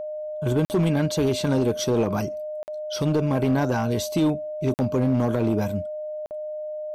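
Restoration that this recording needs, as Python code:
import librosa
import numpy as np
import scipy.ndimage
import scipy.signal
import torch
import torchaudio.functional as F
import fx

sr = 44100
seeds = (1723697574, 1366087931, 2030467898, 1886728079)

y = fx.fix_declip(x, sr, threshold_db=-15.5)
y = fx.notch(y, sr, hz=610.0, q=30.0)
y = fx.fix_interpolate(y, sr, at_s=(0.65, 2.63, 4.74, 6.26), length_ms=49.0)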